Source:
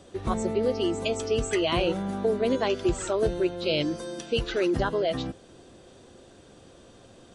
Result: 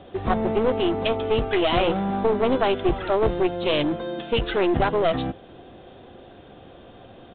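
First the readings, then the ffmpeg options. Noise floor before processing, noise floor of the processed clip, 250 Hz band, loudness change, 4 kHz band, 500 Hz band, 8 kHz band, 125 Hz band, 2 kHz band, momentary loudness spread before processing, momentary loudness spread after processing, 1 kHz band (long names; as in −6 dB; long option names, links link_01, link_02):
−53 dBFS, −47 dBFS, +3.5 dB, +4.0 dB, +3.0 dB, +4.0 dB, below −40 dB, +4.0 dB, +4.5 dB, 5 LU, 5 LU, +8.5 dB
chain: -af "equalizer=frequency=750:width_type=o:width=0.27:gain=7.5,aresample=8000,aeval=exprs='clip(val(0),-1,0.0422)':channel_layout=same,aresample=44100,volume=5.5dB"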